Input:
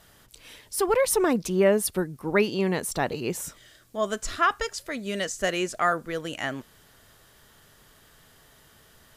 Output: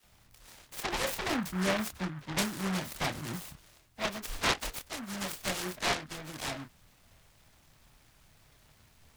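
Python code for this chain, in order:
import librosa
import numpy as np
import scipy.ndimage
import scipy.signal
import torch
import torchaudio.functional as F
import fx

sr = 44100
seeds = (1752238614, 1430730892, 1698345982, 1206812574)

y = fx.fixed_phaser(x, sr, hz=2200.0, stages=8)
y = fx.dispersion(y, sr, late='lows', ms=42.0, hz=1200.0)
y = fx.chorus_voices(y, sr, voices=4, hz=0.33, base_ms=27, depth_ms=1.6, mix_pct=35)
y = fx.noise_mod_delay(y, sr, seeds[0], noise_hz=1200.0, depth_ms=0.24)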